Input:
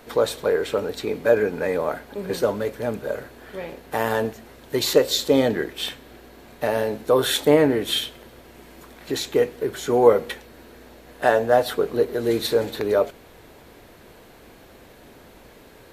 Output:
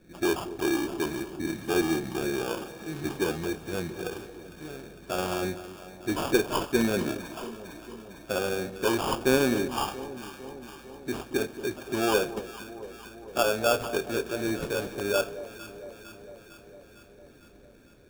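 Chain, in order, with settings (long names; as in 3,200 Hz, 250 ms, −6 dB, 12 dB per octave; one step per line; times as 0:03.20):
gliding playback speed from 73% → 103%
notch filter 450 Hz, Q 12
in parallel at −6 dB: asymmetric clip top −19 dBFS
on the sum: low-pass that shuts in the quiet parts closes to 370 Hz, open at −14.5 dBFS
decimation without filtering 22×
on a send: delay that swaps between a low-pass and a high-pass 227 ms, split 890 Hz, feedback 80%, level −12.5 dB
on the sum: level −9 dB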